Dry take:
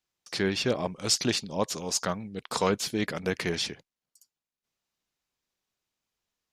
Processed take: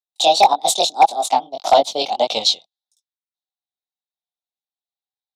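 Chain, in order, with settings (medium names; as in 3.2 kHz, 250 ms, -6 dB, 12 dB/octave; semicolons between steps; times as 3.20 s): gliding tape speed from 167% -> 77%; transient shaper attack +4 dB, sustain -7 dB; two resonant band-passes 1.7 kHz, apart 2.3 oct; chorus 1.7 Hz, delay 17.5 ms, depth 6.9 ms; wavefolder -27 dBFS; loudness maximiser +30.5 dB; three bands expanded up and down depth 70%; trim -4 dB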